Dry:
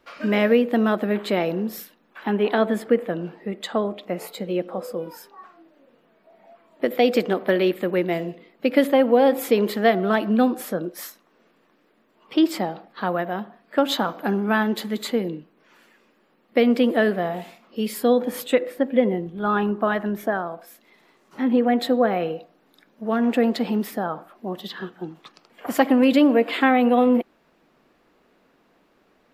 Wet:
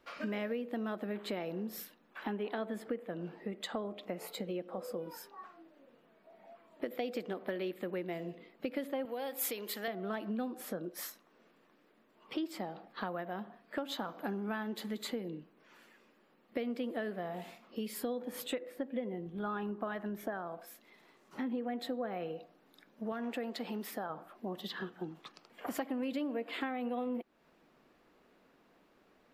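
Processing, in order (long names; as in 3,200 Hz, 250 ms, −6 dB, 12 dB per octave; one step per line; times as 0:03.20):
0:23.12–0:24.10: low-shelf EQ 340 Hz −9 dB
downward compressor 4 to 1, threshold −31 dBFS, peak gain reduction 16.5 dB
0:09.05–0:09.88: spectral tilt +3.5 dB per octave
level −5.5 dB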